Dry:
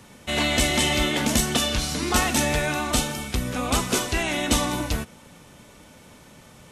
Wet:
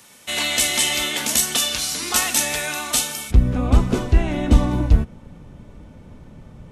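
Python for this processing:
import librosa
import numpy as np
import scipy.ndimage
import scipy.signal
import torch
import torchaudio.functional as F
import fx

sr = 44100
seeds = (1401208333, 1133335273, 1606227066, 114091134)

y = fx.tilt_eq(x, sr, slope=fx.steps((0.0, 3.0), (3.3, -4.0)))
y = y * 10.0 ** (-2.0 / 20.0)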